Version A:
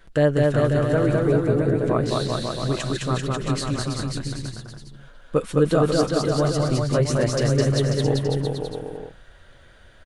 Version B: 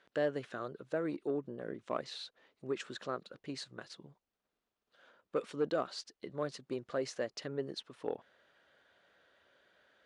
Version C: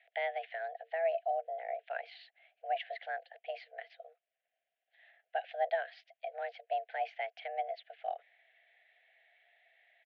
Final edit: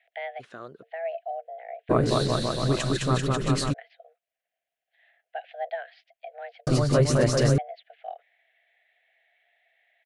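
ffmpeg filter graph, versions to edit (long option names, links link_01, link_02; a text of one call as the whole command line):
ffmpeg -i take0.wav -i take1.wav -i take2.wav -filter_complex "[0:a]asplit=2[link_01][link_02];[2:a]asplit=4[link_03][link_04][link_05][link_06];[link_03]atrim=end=0.41[link_07];[1:a]atrim=start=0.39:end=0.84[link_08];[link_04]atrim=start=0.82:end=1.91[link_09];[link_01]atrim=start=1.89:end=3.74[link_10];[link_05]atrim=start=3.72:end=6.672[link_11];[link_02]atrim=start=6.668:end=7.582[link_12];[link_06]atrim=start=7.578[link_13];[link_07][link_08]acrossfade=duration=0.02:curve1=tri:curve2=tri[link_14];[link_14][link_09]acrossfade=duration=0.02:curve1=tri:curve2=tri[link_15];[link_15][link_10]acrossfade=duration=0.02:curve1=tri:curve2=tri[link_16];[link_16][link_11]acrossfade=duration=0.02:curve1=tri:curve2=tri[link_17];[link_17][link_12]acrossfade=duration=0.004:curve1=hsin:curve2=hsin[link_18];[link_18][link_13]acrossfade=duration=0.004:curve1=hsin:curve2=hsin" out.wav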